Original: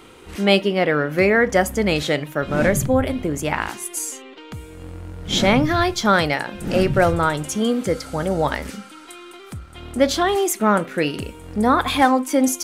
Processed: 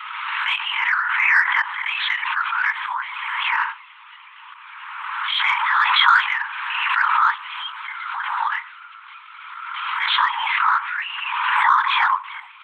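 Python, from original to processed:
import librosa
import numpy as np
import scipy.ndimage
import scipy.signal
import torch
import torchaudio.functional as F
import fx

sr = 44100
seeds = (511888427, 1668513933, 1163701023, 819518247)

p1 = scipy.signal.sosfilt(scipy.signal.butter(2, 2100.0, 'lowpass', fs=sr, output='sos'), x)
p2 = fx.lpc_vocoder(p1, sr, seeds[0], excitation='whisper', order=10)
p3 = scipy.signal.sosfilt(scipy.signal.butter(16, 920.0, 'highpass', fs=sr, output='sos'), p2)
p4 = 10.0 ** (-19.0 / 20.0) * np.tanh(p3 / 10.0 ** (-19.0 / 20.0))
p5 = p3 + (p4 * librosa.db_to_amplitude(-8.0))
p6 = fx.pre_swell(p5, sr, db_per_s=28.0)
y = p6 * librosa.db_to_amplitude(3.0)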